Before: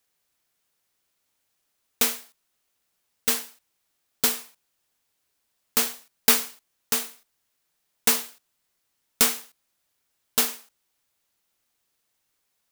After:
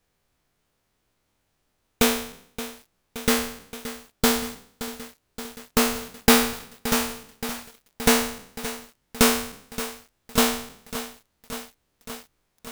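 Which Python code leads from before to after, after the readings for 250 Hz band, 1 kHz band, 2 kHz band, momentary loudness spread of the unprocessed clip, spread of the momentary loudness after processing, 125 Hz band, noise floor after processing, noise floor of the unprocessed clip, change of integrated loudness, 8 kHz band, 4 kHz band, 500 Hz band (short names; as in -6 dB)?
+13.5 dB, +8.5 dB, +6.0 dB, 17 LU, 19 LU, +15.0 dB, -74 dBFS, -76 dBFS, -0.5 dB, 0.0 dB, +3.0 dB, +11.5 dB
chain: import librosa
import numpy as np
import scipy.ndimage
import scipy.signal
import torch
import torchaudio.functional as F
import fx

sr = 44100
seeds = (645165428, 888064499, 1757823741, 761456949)

y = fx.spec_trails(x, sr, decay_s=0.62)
y = fx.tilt_eq(y, sr, slope=-3.0)
y = fx.echo_crushed(y, sr, ms=573, feedback_pct=80, bits=7, wet_db=-13.0)
y = y * librosa.db_to_amplitude(5.0)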